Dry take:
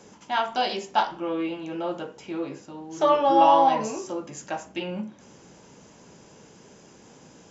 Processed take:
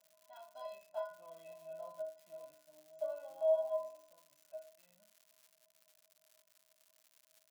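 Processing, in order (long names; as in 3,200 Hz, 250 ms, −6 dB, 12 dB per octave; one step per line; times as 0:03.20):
source passing by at 0:01.73, 5 m/s, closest 3.7 metres
pair of resonant band-passes 320 Hz, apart 1.9 octaves
stiff-string resonator 300 Hz, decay 0.53 s, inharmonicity 0.03
surface crackle 210 per second −73 dBFS
spectral tilt +3 dB per octave
level +15 dB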